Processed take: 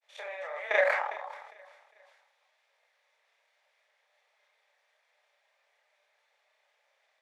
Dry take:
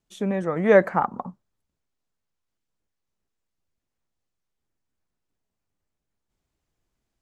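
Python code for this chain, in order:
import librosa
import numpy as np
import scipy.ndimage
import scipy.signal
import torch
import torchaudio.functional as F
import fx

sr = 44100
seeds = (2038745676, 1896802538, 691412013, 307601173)

y = fx.bin_compress(x, sr, power=0.6)
y = scipy.signal.sosfilt(scipy.signal.butter(8, 550.0, 'highpass', fs=sr, output='sos'), y)
y = fx.band_shelf(y, sr, hz=3200.0, db=9.5, octaves=1.7)
y = fx.level_steps(y, sr, step_db=17)
y = fx.granulator(y, sr, seeds[0], grain_ms=100.0, per_s=20.0, spray_ms=37.0, spread_st=0)
y = fx.chorus_voices(y, sr, voices=6, hz=0.47, base_ms=30, depth_ms=3.4, mix_pct=45)
y = fx.echo_feedback(y, sr, ms=405, feedback_pct=46, wet_db=-23)
y = fx.sustainer(y, sr, db_per_s=48.0)
y = y * 10.0 ** (-1.5 / 20.0)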